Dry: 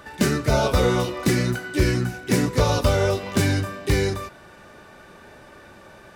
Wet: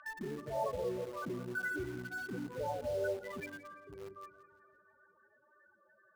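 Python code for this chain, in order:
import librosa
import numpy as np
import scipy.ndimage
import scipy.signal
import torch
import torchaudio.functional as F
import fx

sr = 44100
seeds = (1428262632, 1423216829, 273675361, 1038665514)

p1 = fx.spec_topn(x, sr, count=8)
p2 = p1 + fx.echo_feedback(p1, sr, ms=207, feedback_pct=60, wet_db=-17.5, dry=0)
p3 = fx.filter_sweep_bandpass(p2, sr, from_hz=2500.0, to_hz=5000.0, start_s=3.08, end_s=3.65, q=1.7)
p4 = fx.transient(p3, sr, attack_db=-5, sustain_db=0)
p5 = fx.peak_eq(p4, sr, hz=120.0, db=-14.0, octaves=1.0, at=(3.4, 3.86))
p6 = fx.quant_dither(p5, sr, seeds[0], bits=8, dither='none')
p7 = p5 + F.gain(torch.from_numpy(p6), -8.5).numpy()
p8 = fx.echo_warbled(p7, sr, ms=170, feedback_pct=43, rate_hz=2.8, cents=51, wet_db=-16.0)
y = F.gain(torch.from_numpy(p8), 4.0).numpy()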